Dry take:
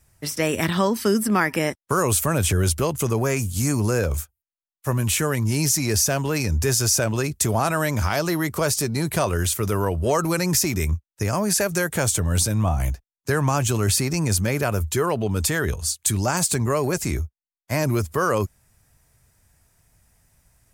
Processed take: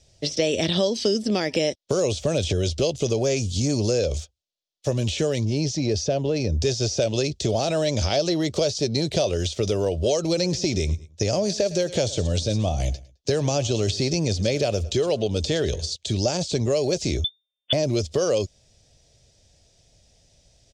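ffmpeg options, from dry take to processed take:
ffmpeg -i in.wav -filter_complex "[0:a]asettb=1/sr,asplit=3[link_01][link_02][link_03];[link_01]atrim=end=5.454[link_04];[link_02]atrim=start=5.45:end=6.62,asetpts=PTS-STARTPTS,afade=type=in:duration=0.004:curve=qsin,afade=type=out:start_time=1.166:duration=0.004:curve=qsin,lowpass=frequency=1000:poles=1[link_05];[link_03]atrim=start=6.616[link_06];[link_04][link_05]acrossfade=duration=0.004:curve1=hsin:curve2=qsin[link_07];[link_07][link_06]acrossfade=duration=0.004:curve1=qsin:curve2=hsin,asettb=1/sr,asplit=3[link_08][link_09][link_10];[link_08]atrim=end=10.244[link_11];[link_09]atrim=start=10.24:end=15.96,asetpts=PTS-STARTPTS,afade=type=in:duration=0.004:curve=qsin,afade=type=out:start_time=5.716:duration=0.004:curve=qsin,aecho=1:1:106|212:0.0891|0.0258,atrim=end_sample=252252[link_12];[link_10]atrim=start=15.956[link_13];[link_11][link_12]acrossfade=duration=0.004:curve1=hsin:curve2=qsin[link_14];[link_14][link_13]acrossfade=duration=0.004:curve1=qsin:curve2=hsin,asettb=1/sr,asplit=3[link_15][link_16][link_17];[link_15]atrim=end=17.244[link_18];[link_16]atrim=start=17.24:end=17.73,asetpts=PTS-STARTPTS,afade=type=in:duration=0.004:curve=qsin,afade=type=out:start_time=0.486:duration=0.004:curve=qsin,lowpass=frequency=3100:width_type=q:width=0.5098,lowpass=frequency=3100:width_type=q:width=0.6013,lowpass=frequency=3100:width_type=q:width=0.9,lowpass=frequency=3100:width_type=q:width=2.563,afreqshift=-3600[link_19];[link_17]atrim=start=17.726[link_20];[link_18][link_19]acrossfade=duration=0.004:curve1=hsin:curve2=qsin[link_21];[link_21][link_20]acrossfade=duration=0.004:curve1=qsin:curve2=hsin,deesser=0.5,firequalizer=gain_entry='entry(200,0);entry(570,10);entry(1000,-11);entry(1500,-10);entry(3400,12);entry(5800,9);entry(12000,-24)':delay=0.05:min_phase=1,acrossover=split=2500|7800[link_22][link_23][link_24];[link_22]acompressor=threshold=-21dB:ratio=4[link_25];[link_23]acompressor=threshold=-29dB:ratio=4[link_26];[link_24]acompressor=threshold=-50dB:ratio=4[link_27];[link_25][link_26][link_27]amix=inputs=3:normalize=0,volume=1dB" out.wav

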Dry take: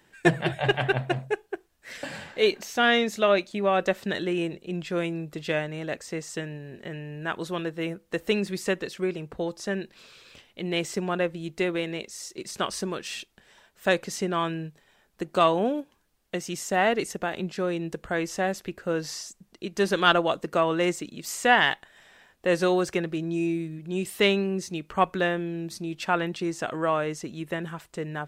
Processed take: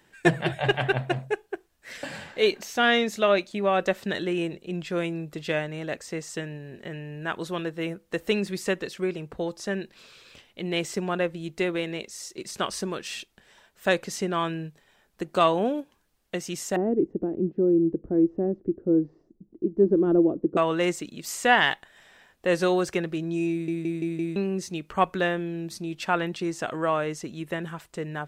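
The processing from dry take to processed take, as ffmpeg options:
ffmpeg -i in.wav -filter_complex "[0:a]asettb=1/sr,asplit=3[link_01][link_02][link_03];[link_01]atrim=end=16.764[link_04];[link_02]atrim=start=16.76:end=20.57,asetpts=PTS-STARTPTS,afade=type=in:duration=0.004:curve=qsin,afade=type=out:start_time=3.806:duration=0.004:curve=qsin,lowpass=frequency=330:width_type=q:width=3.9[link_05];[link_03]atrim=start=20.566[link_06];[link_04][link_05]acrossfade=duration=0.004:curve1=hsin:curve2=qsin[link_07];[link_07][link_06]acrossfade=duration=0.004:curve1=qsin:curve2=hsin,asplit=6[link_08][link_09][link_10][link_11][link_12][link_13];[link_08]atrim=end=23.682[link_14];[link_09]atrim=start=23.508:end=23.682[link_15];[link_10]atrim=start=23.508:end=23.682[link_16];[link_11]atrim=start=23.508:end=23.682[link_17];[link_12]atrim=start=23.508:end=23.682[link_18];[link_13]atrim=start=24.358[link_19];[link_14][link_15]acrossfade=duration=0.004:curve1=hsin:curve2=hsin[link_20];[link_20][link_16]acrossfade=duration=0.004:curve1=hsin:curve2=hsin[link_21];[link_21][link_17]acrossfade=duration=0.004:curve1=hsin:curve2=hsin[link_22];[link_22][link_18]acrossfade=duration=0.004:curve1=hsin:curve2=hsin[link_23];[link_23][link_19]acrossfade=duration=0.004:curve1=hsin:curve2=hsin" out.wav

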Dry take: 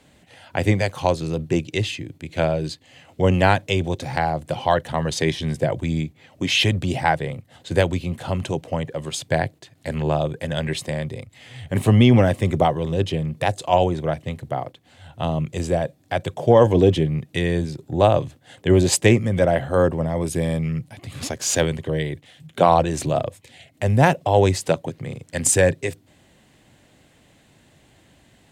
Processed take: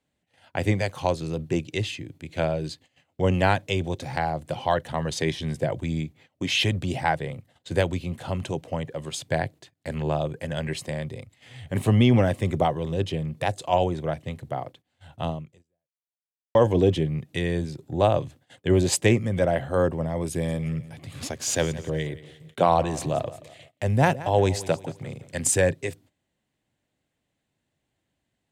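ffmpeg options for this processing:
ffmpeg -i in.wav -filter_complex "[0:a]asettb=1/sr,asplit=3[link_01][link_02][link_03];[link_01]atrim=end=10.264[link_04];[link_02]atrim=start=10.26:end=10.85,asetpts=PTS-STARTPTS,afade=type=in:duration=0.004:curve=qsin,afade=type=out:start_time=0.586:duration=0.004:curve=qsin,bandreject=frequency=3600:width=8.1[link_05];[link_03]atrim=start=10.846[link_06];[link_04][link_05]acrossfade=duration=0.004:curve1=hsin:curve2=qsin[link_07];[link_07][link_06]acrossfade=duration=0.004:curve1=qsin:curve2=hsin,asettb=1/sr,asplit=3[link_08][link_09][link_10];[link_08]atrim=end=20.314[link_11];[link_09]atrim=start=20.31:end=25.46,asetpts=PTS-STARTPTS,afade=type=in:duration=0.004:curve=qsin,afade=type=out:start_time=5.146:duration=0.004:curve=qsin,aecho=1:1:175|350|525:0.141|0.0579|0.0237,atrim=end_sample=227115[link_12];[link_10]atrim=start=25.456[link_13];[link_11][link_12]acrossfade=duration=0.004:curve1=hsin:curve2=qsin[link_14];[link_14][link_13]acrossfade=duration=0.004:curve1=qsin:curve2=hsin,asplit=2[link_15][link_16];[link_15]atrim=end=16.55,asetpts=PTS-STARTPTS,afade=type=out:start_time=15.29:duration=1.26:curve=exp[link_17];[link_16]atrim=start=16.55,asetpts=PTS-STARTPTS,afade=type=in:duration=0.004:curve=hsin[link_18];[link_17][link_18]concat=n=2:v=0:a=1,agate=range=-19dB:threshold=-45dB:ratio=16:detection=peak,volume=-4.5dB" out.wav

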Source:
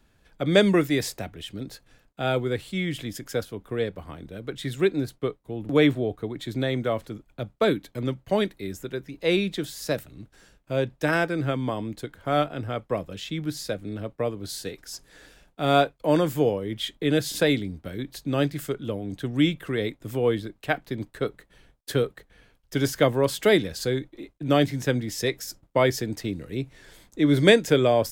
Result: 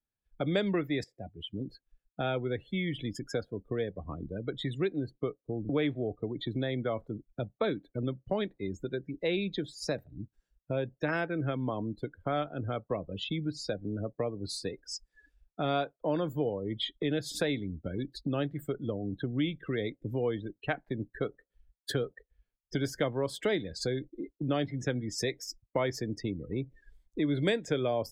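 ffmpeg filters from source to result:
ffmpeg -i in.wav -filter_complex "[0:a]asplit=2[link_01][link_02];[link_01]atrim=end=1.04,asetpts=PTS-STARTPTS,afade=type=out:start_time=1.036:duration=0.004:curve=hsin:silence=0.188365[link_03];[link_02]atrim=start=1.04,asetpts=PTS-STARTPTS,afade=type=in:duration=1.2:curve=qsin:silence=0.188365[link_04];[link_03][link_04]concat=n=2:v=0:a=1,afftdn=noise_reduction=35:noise_floor=-37,acompressor=threshold=-36dB:ratio=2.5,volume=3dB" out.wav

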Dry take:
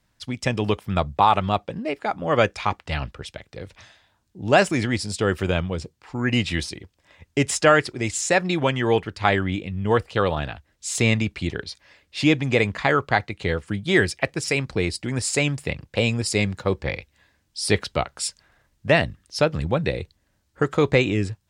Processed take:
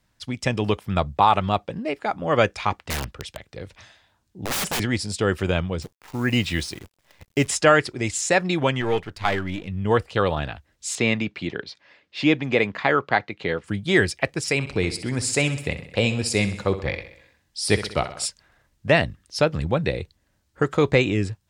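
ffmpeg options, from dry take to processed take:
ffmpeg -i in.wav -filter_complex "[0:a]asettb=1/sr,asplit=3[link_01][link_02][link_03];[link_01]atrim=end=2.904[link_04];[link_02]atrim=start=2.9:end=4.8,asetpts=PTS-STARTPTS,afade=type=in:duration=0.004:curve=qsin,afade=type=out:start_time=1.896:duration=0.004:curve=qsin,aeval=exprs='(mod(10.6*val(0)+1,2)-1)/10.6':channel_layout=same[link_05];[link_03]atrim=start=4.796[link_06];[link_04][link_05]acrossfade=duration=0.004:curve1=hsin:curve2=qsin[link_07];[link_07][link_06]acrossfade=duration=0.004:curve1=qsin:curve2=hsin,asettb=1/sr,asplit=3[link_08][link_09][link_10];[link_08]atrim=end=5.824[link_11];[link_09]atrim=start=5.82:end=7.48,asetpts=PTS-STARTPTS,afade=type=in:duration=0.004:curve=qsin,afade=type=out:start_time=1.656:duration=0.004:curve=qsin,acrusher=bits=8:dc=4:mix=0:aa=0.000001[link_12];[link_10]atrim=start=7.476[link_13];[link_11][link_12]acrossfade=duration=0.004:curve1=hsin:curve2=qsin[link_14];[link_14][link_13]acrossfade=duration=0.004:curve1=qsin:curve2=hsin,asplit=3[link_15][link_16][link_17];[link_15]afade=type=out:start_time=8.8:duration=0.02[link_18];[link_16]aeval=exprs='if(lt(val(0),0),0.447*val(0),val(0))':channel_layout=same,afade=type=in:start_time=8.8:duration=0.02,afade=type=out:start_time=9.67:duration=0.02[link_19];[link_17]afade=type=in:start_time=9.67:duration=0.02[link_20];[link_18][link_19][link_20]amix=inputs=3:normalize=0,asettb=1/sr,asplit=3[link_21][link_22][link_23];[link_21]atrim=end=10.954[link_24];[link_22]atrim=start=10.95:end=13.64,asetpts=PTS-STARTPTS,afade=type=in:duration=0.004:curve=qsin,afade=type=out:start_time=2.686:duration=0.004:curve=qsin,highpass=170,lowpass=4200[link_25];[link_23]atrim=start=13.636[link_26];[link_24][link_25]acrossfade=duration=0.004:curve1=hsin:curve2=qsin[link_27];[link_27][link_26]acrossfade=duration=0.004:curve1=qsin:curve2=hsin,asettb=1/sr,asplit=3[link_28][link_29][link_30];[link_28]atrim=end=14.544[link_31];[link_29]atrim=start=14.54:end=18.26,asetpts=PTS-STARTPTS,afade=type=in:duration=0.004:curve=qsin,afade=type=out:start_time=3.716:duration=0.004:curve=qsin,aecho=1:1:64|128|192|256|320|384:0.237|0.133|0.0744|0.0416|0.0233|0.0131,atrim=end_sample=164052[link_32];[link_30]atrim=start=18.256[link_33];[link_31][link_32]acrossfade=duration=0.004:curve1=hsin:curve2=qsin[link_34];[link_34][link_33]acrossfade=duration=0.004:curve1=qsin:curve2=hsin" out.wav

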